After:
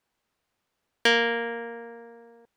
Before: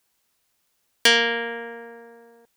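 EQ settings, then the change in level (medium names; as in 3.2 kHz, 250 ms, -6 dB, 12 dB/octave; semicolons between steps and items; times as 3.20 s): low-pass 1.6 kHz 6 dB/octave; 0.0 dB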